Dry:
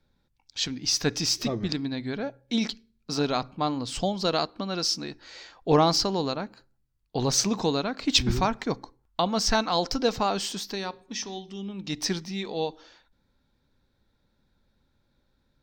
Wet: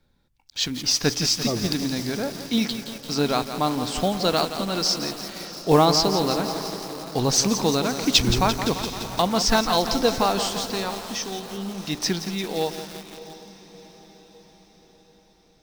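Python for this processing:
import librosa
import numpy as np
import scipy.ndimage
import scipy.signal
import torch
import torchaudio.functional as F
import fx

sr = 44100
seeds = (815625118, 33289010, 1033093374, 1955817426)

y = fx.block_float(x, sr, bits=5)
y = fx.echo_diffused(y, sr, ms=699, feedback_pct=53, wet_db=-15.0)
y = fx.echo_crushed(y, sr, ms=171, feedback_pct=80, bits=6, wet_db=-9.0)
y = F.gain(torch.from_numpy(y), 3.5).numpy()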